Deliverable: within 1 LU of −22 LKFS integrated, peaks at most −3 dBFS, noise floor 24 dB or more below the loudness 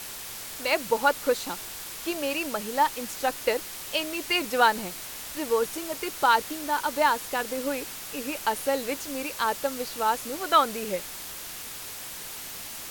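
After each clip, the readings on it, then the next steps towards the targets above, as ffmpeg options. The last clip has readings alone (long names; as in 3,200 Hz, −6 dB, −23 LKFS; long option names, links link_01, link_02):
background noise floor −39 dBFS; target noise floor −52 dBFS; integrated loudness −27.5 LKFS; sample peak −7.0 dBFS; target loudness −22.0 LKFS
→ -af "afftdn=noise_reduction=13:noise_floor=-39"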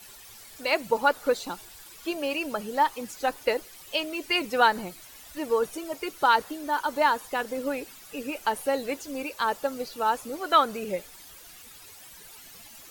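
background noise floor −48 dBFS; target noise floor −52 dBFS
→ -af "afftdn=noise_reduction=6:noise_floor=-48"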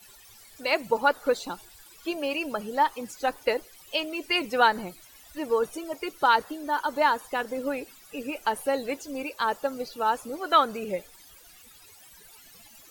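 background noise floor −52 dBFS; integrated loudness −27.5 LKFS; sample peak −7.0 dBFS; target loudness −22.0 LKFS
→ -af "volume=5.5dB,alimiter=limit=-3dB:level=0:latency=1"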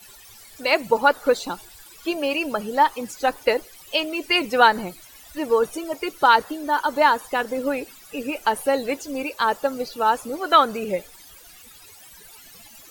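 integrated loudness −22.0 LKFS; sample peak −3.0 dBFS; background noise floor −47 dBFS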